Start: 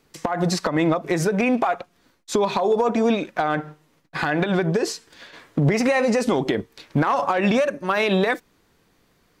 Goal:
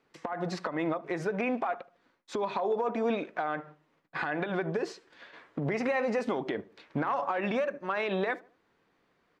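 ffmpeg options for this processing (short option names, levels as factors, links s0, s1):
-filter_complex "[0:a]lowpass=2100,aemphasis=mode=production:type=bsi,alimiter=limit=0.188:level=0:latency=1:release=400,asplit=2[s0][s1];[s1]adelay=74,lowpass=f=1300:p=1,volume=0.106,asplit=2[s2][s3];[s3]adelay=74,lowpass=f=1300:p=1,volume=0.41,asplit=2[s4][s5];[s5]adelay=74,lowpass=f=1300:p=1,volume=0.41[s6];[s2][s4][s6]amix=inputs=3:normalize=0[s7];[s0][s7]amix=inputs=2:normalize=0,volume=0.531"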